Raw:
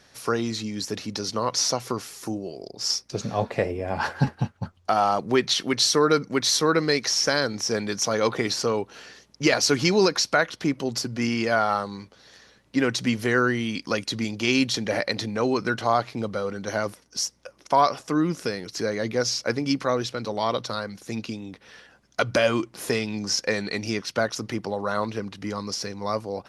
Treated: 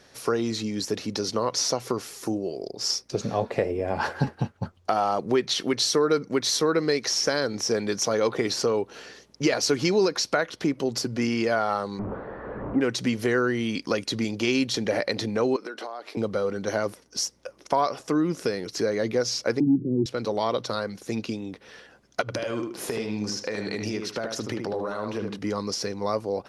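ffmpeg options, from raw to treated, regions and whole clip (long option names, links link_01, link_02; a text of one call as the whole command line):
ffmpeg -i in.wav -filter_complex "[0:a]asettb=1/sr,asplit=3[link_01][link_02][link_03];[link_01]atrim=end=11.994[link_04];[link_02]atrim=start=11.99:end=12.81,asetpts=PTS-STARTPTS,afade=type=in:duration=0.004:curve=qsin,afade=type=out:start_time=0.816:duration=0.004:curve=qsin,aeval=exprs='val(0)+0.5*0.0422*sgn(val(0))':channel_layout=same,lowpass=frequency=1300:width=0.5412,lowpass=frequency=1300:width=1.3066[link_05];[link_03]atrim=start=12.806[link_06];[link_04][link_05]acrossfade=duration=0.004:curve1=hsin:curve2=qsin[link_07];[link_07][link_06]acrossfade=duration=0.004:curve1=qsin:curve2=hsin,asettb=1/sr,asplit=3[link_08][link_09][link_10];[link_08]atrim=end=15.564[link_11];[link_09]atrim=start=15.56:end=16.17,asetpts=PTS-STARTPTS,afade=type=in:duration=0.004:curve=qsin,afade=type=out:start_time=0.606:duration=0.004:curve=qsin,highpass=frequency=290:width=0.5412,highpass=frequency=290:width=1.3066,bandreject=frequency=6600:width=10,acompressor=threshold=-33dB:ratio=16:attack=3.2:release=140:knee=1:detection=peak[link_12];[link_10]atrim=start=16.166[link_13];[link_11][link_12]acrossfade=duration=0.004:curve1=hsin:curve2=qsin[link_14];[link_14][link_13]acrossfade=duration=0.004:curve1=qsin:curve2=hsin,asettb=1/sr,asplit=3[link_15][link_16][link_17];[link_15]atrim=end=19.604[link_18];[link_16]atrim=start=19.6:end=20.06,asetpts=PTS-STARTPTS,afade=type=in:duration=0.004:curve=qsin,afade=type=out:start_time=0.456:duration=0.004:curve=qsin,aeval=exprs='val(0)+0.5*0.0299*sgn(val(0))':channel_layout=same,asuperpass=centerf=200:order=12:qfactor=0.77,acontrast=84[link_19];[link_17]atrim=start=20.056[link_20];[link_18][link_19]acrossfade=duration=0.004:curve1=hsin:curve2=qsin[link_21];[link_21][link_20]acrossfade=duration=0.004:curve1=qsin:curve2=hsin,asettb=1/sr,asplit=3[link_22][link_23][link_24];[link_22]atrim=end=22.214[link_25];[link_23]atrim=start=22.21:end=25.39,asetpts=PTS-STARTPTS,afade=type=in:duration=0.004:curve=qsin,afade=type=out:start_time=3.176:duration=0.004:curve=qsin,acompressor=threshold=-28dB:ratio=12:attack=3.2:release=140:knee=1:detection=peak,asplit=2[link_26][link_27];[link_27]adelay=76,lowpass=frequency=2600:poles=1,volume=-4dB,asplit=2[link_28][link_29];[link_29]adelay=76,lowpass=frequency=2600:poles=1,volume=0.28,asplit=2[link_30][link_31];[link_31]adelay=76,lowpass=frequency=2600:poles=1,volume=0.28,asplit=2[link_32][link_33];[link_33]adelay=76,lowpass=frequency=2600:poles=1,volume=0.28[link_34];[link_26][link_28][link_30][link_32][link_34]amix=inputs=5:normalize=0,atrim=end_sample=140238[link_35];[link_24]atrim=start=25.386[link_36];[link_25][link_35]acrossfade=duration=0.004:curve1=hsin:curve2=qsin[link_37];[link_37][link_36]acrossfade=duration=0.004:curve1=qsin:curve2=hsin,equalizer=frequency=420:width=1.1:gain=5.5,acompressor=threshold=-23dB:ratio=2" out.wav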